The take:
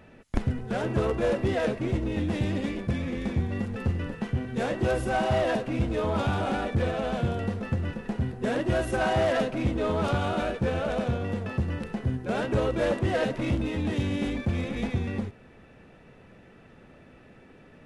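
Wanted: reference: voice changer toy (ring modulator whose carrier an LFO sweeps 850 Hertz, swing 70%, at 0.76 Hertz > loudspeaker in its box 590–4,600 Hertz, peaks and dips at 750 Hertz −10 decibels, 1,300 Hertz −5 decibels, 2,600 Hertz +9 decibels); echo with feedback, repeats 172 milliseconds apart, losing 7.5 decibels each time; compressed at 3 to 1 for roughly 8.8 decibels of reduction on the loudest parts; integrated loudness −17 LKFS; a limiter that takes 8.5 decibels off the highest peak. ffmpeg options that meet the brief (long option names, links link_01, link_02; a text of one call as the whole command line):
ffmpeg -i in.wav -af "acompressor=threshold=-32dB:ratio=3,alimiter=level_in=2.5dB:limit=-24dB:level=0:latency=1,volume=-2.5dB,aecho=1:1:172|344|516|688|860:0.422|0.177|0.0744|0.0312|0.0131,aeval=exprs='val(0)*sin(2*PI*850*n/s+850*0.7/0.76*sin(2*PI*0.76*n/s))':channel_layout=same,highpass=590,equalizer=frequency=750:width_type=q:width=4:gain=-10,equalizer=frequency=1300:width_type=q:width=4:gain=-5,equalizer=frequency=2600:width_type=q:width=4:gain=9,lowpass=frequency=4600:width=0.5412,lowpass=frequency=4600:width=1.3066,volume=23dB" out.wav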